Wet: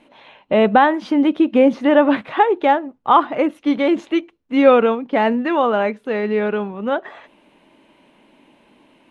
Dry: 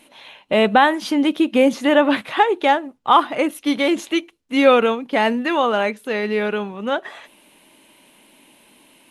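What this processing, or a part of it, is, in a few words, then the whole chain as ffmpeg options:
through cloth: -filter_complex "[0:a]lowpass=7.7k,highshelf=f=3.1k:g=-17.5,asettb=1/sr,asplit=3[a][b][c];[a]atrim=end=1.584[d];[b]atrim=start=1.58:end=2.06,asetpts=PTS-STARTPTS,afade=t=in:d=0.004:c=qsin,afade=t=out:st=0.476:d=0.004:c=qsin,bandreject=f=7.2k:w=6.7[e];[c]atrim=start=2.056[f];[d][e]acrossfade=d=0.004:c1=hsin:c2=qsin[g];[g][f]acrossfade=d=0.004:c1=qsin:c2=hsin,volume=2.5dB"

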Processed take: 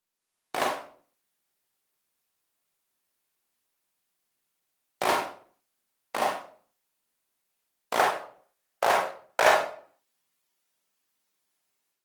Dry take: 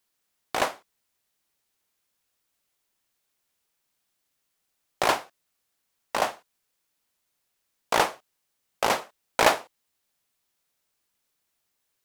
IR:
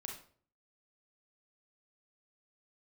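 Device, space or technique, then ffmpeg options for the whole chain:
far-field microphone of a smart speaker: -filter_complex "[0:a]asplit=3[a][b][c];[a]afade=t=out:st=7.98:d=0.02[d];[b]equalizer=f=250:t=o:w=0.67:g=-9,equalizer=f=630:t=o:w=0.67:g=7,equalizer=f=1.6k:t=o:w=0.67:g=6,afade=t=in:st=7.98:d=0.02,afade=t=out:st=9.51:d=0.02[e];[c]afade=t=in:st=9.51:d=0.02[f];[d][e][f]amix=inputs=3:normalize=0[g];[1:a]atrim=start_sample=2205[h];[g][h]afir=irnorm=-1:irlink=0,highpass=140,dynaudnorm=f=180:g=3:m=8dB,volume=-5.5dB" -ar 48000 -c:a libopus -b:a 24k

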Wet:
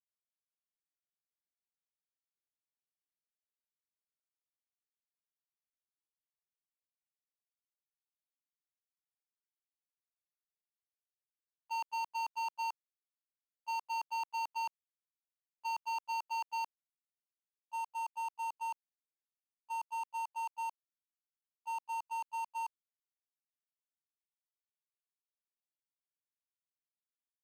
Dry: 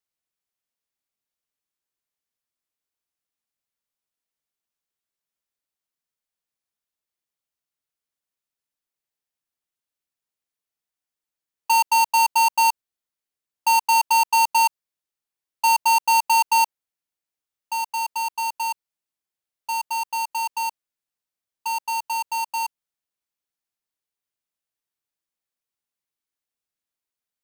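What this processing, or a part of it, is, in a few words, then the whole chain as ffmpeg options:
walkie-talkie: -af "highpass=530,lowpass=2.3k,asoftclip=type=hard:threshold=-33dB,agate=range=-42dB:threshold=-33dB:ratio=16:detection=peak,volume=16dB"

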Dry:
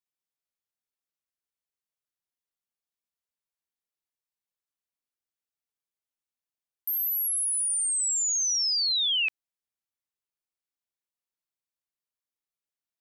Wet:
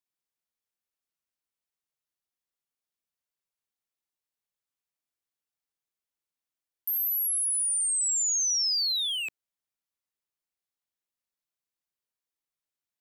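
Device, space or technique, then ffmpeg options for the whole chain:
one-band saturation: -filter_complex "[0:a]acrossover=split=330|3900[a][b][c];[b]asoftclip=type=tanh:threshold=-35.5dB[d];[a][d][c]amix=inputs=3:normalize=0"

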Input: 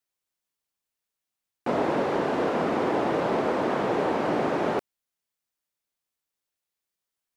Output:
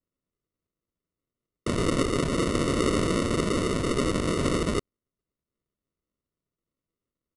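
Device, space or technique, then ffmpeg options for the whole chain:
crushed at another speed: -af "asetrate=88200,aresample=44100,acrusher=samples=27:mix=1:aa=0.000001,asetrate=22050,aresample=44100"

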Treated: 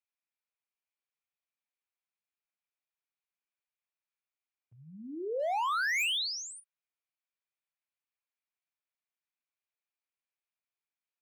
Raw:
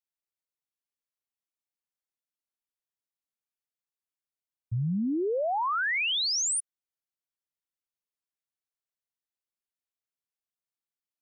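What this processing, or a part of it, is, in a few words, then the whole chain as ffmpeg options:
megaphone: -filter_complex "[0:a]highpass=620,lowpass=3.2k,equalizer=f=2.4k:t=o:w=0.22:g=8.5,asoftclip=type=hard:threshold=-29dB,asplit=2[a][b];[b]adelay=38,volume=-13dB[c];[a][c]amix=inputs=2:normalize=0"

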